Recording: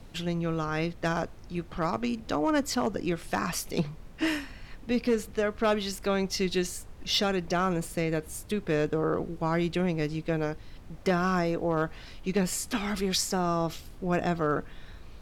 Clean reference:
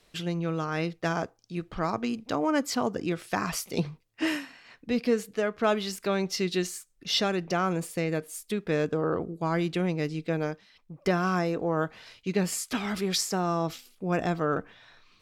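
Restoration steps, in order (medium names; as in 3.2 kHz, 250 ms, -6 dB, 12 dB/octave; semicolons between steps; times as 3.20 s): clip repair -18.5 dBFS; noise print and reduce 14 dB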